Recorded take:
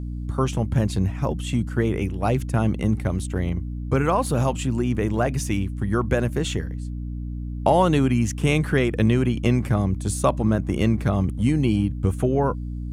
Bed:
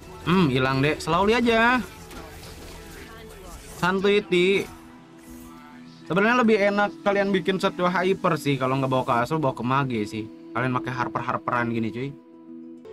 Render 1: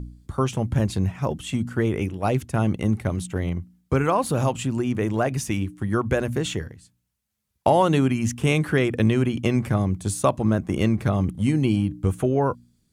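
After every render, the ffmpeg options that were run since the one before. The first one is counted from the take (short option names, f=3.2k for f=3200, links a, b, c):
-af "bandreject=f=60:t=h:w=4,bandreject=f=120:t=h:w=4,bandreject=f=180:t=h:w=4,bandreject=f=240:t=h:w=4,bandreject=f=300:t=h:w=4"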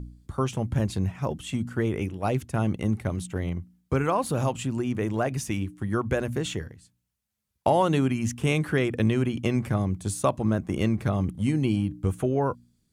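-af "volume=-3.5dB"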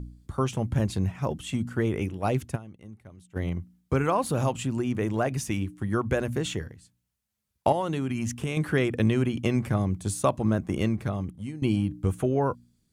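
-filter_complex "[0:a]asettb=1/sr,asplit=3[a][b][c];[a]atrim=end=7.724[d];[b]atrim=start=7.72:end=8.57,asetpts=PTS-STARTPTS,afade=t=in:d=0.004:c=qsin,afade=t=out:st=0.846:d=0.004:c=qsin,acompressor=threshold=-24dB:ratio=6:attack=3.2:release=140:knee=1:detection=peak[e];[c]atrim=start=8.566[f];[d][e]acrossfade=d=0.004:c1=hsin:c2=qsin[g];[g][f]acrossfade=d=0.004:c1=qsin:c2=hsin,asplit=4[h][i][j][k];[h]atrim=end=2.68,asetpts=PTS-STARTPTS,afade=t=out:st=2.55:d=0.13:c=exp:silence=0.105925[l];[i]atrim=start=2.68:end=3.24,asetpts=PTS-STARTPTS,volume=-19.5dB[m];[j]atrim=start=3.24:end=11.62,asetpts=PTS-STARTPTS,afade=t=in:d=0.13:c=exp:silence=0.105925,afade=t=out:st=7.46:d=0.92:silence=0.158489[n];[k]atrim=start=11.62,asetpts=PTS-STARTPTS,afade=t=in:d=0.004:c=hsin:silence=0.158489[o];[l][m][n][o]concat=n=4:v=0:a=1"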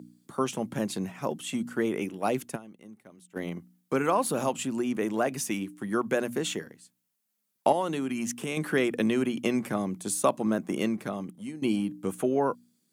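-af "highpass=f=190:w=0.5412,highpass=f=190:w=1.3066,highshelf=f=10k:g=9"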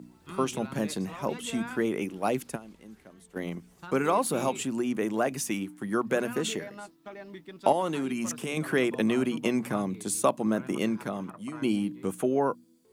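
-filter_complex "[1:a]volume=-22dB[a];[0:a][a]amix=inputs=2:normalize=0"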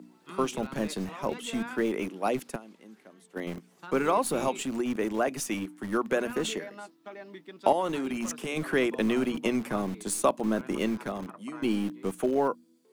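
-filter_complex "[0:a]acrossover=split=170|6200[a][b][c];[a]acrusher=bits=4:dc=4:mix=0:aa=0.000001[d];[c]aeval=exprs='0.119*(cos(1*acos(clip(val(0)/0.119,-1,1)))-cos(1*PI/2))+0.0106*(cos(4*acos(clip(val(0)/0.119,-1,1)))-cos(4*PI/2))+0.0106*(cos(6*acos(clip(val(0)/0.119,-1,1)))-cos(6*PI/2))+0.00668*(cos(7*acos(clip(val(0)/0.119,-1,1)))-cos(7*PI/2))+0.0075*(cos(8*acos(clip(val(0)/0.119,-1,1)))-cos(8*PI/2))':c=same[e];[d][b][e]amix=inputs=3:normalize=0"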